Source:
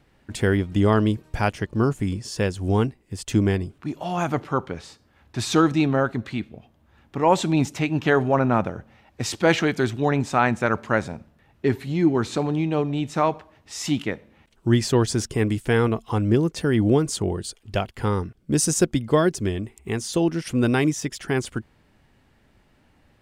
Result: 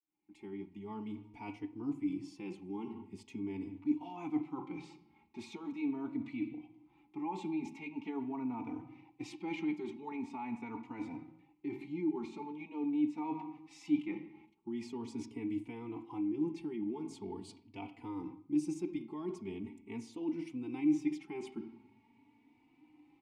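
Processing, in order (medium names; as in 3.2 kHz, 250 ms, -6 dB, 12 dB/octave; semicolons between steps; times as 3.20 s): fade-in on the opening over 2.20 s; on a send at -10 dB: reverberation RT60 0.75 s, pre-delay 5 ms; on the sum: peak limiter -12.5 dBFS, peak gain reduction 8.5 dB; reverse; compression 4:1, threshold -32 dBFS, peak gain reduction 13 dB; reverse; vowel filter u; treble shelf 6.4 kHz +11 dB; endless flanger 3.4 ms +0.43 Hz; trim +8 dB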